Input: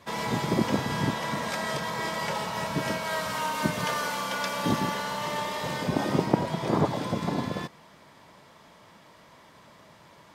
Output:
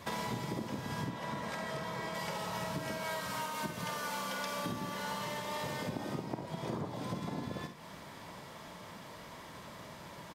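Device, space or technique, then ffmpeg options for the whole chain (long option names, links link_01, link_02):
ASMR close-microphone chain: -filter_complex "[0:a]lowshelf=frequency=210:gain=3.5,acompressor=threshold=-39dB:ratio=10,highshelf=frequency=9900:gain=6,asettb=1/sr,asplit=3[link_01][link_02][link_03];[link_01]atrim=end=1.044[link_04];[link_02]atrim=start=1.04:end=2.15,asetpts=PTS-STARTPTS,afade=type=in:duration=0.004:curve=qsin,afade=type=out:start_time=1.106:duration=0.004:curve=qsin,highshelf=frequency=4100:gain=-8[link_05];[link_03]atrim=start=2.146[link_06];[link_04][link_05]acrossfade=duration=0.004:curve1=hsin:curve2=qsin[link_07];[link_07][link_06]acrossfade=duration=0.004:curve1=qsin:curve2=hsin,aecho=1:1:50|67:0.355|0.266,volume=3dB"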